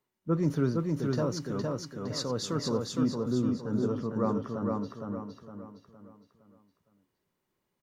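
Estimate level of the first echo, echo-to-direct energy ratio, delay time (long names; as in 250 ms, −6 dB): −3.0 dB, −2.0 dB, 462 ms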